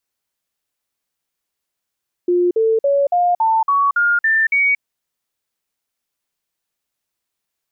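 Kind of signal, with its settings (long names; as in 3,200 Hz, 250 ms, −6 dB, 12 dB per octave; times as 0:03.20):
stepped sweep 354 Hz up, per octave 3, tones 9, 0.23 s, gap 0.05 s −12 dBFS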